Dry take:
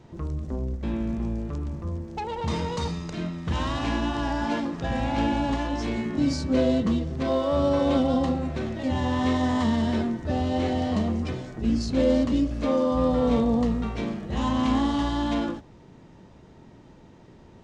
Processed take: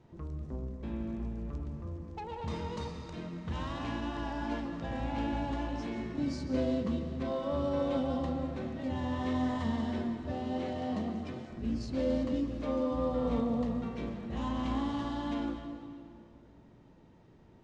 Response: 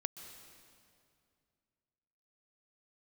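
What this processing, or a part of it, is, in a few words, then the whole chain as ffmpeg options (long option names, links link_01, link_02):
swimming-pool hall: -filter_complex "[1:a]atrim=start_sample=2205[link_01];[0:a][link_01]afir=irnorm=-1:irlink=0,highshelf=frequency=4600:gain=-6.5,asettb=1/sr,asplit=3[link_02][link_03][link_04];[link_02]atrim=end=10.334[link_05];[link_03]atrim=start=10.33:end=11.49,asetpts=PTS-STARTPTS,afade=type=in:duration=0.004:curve=qsin,afade=type=out:start_time=1.156:duration=0.004:curve=qsin,highpass=120[link_06];[link_04]atrim=start=11.486[link_07];[link_05][link_06]acrossfade=duration=0.004:curve1=hsin:curve2=qsin[link_08];[link_08][link_07]acrossfade=duration=0.004:curve1=qsin:curve2=hsin,volume=-8dB"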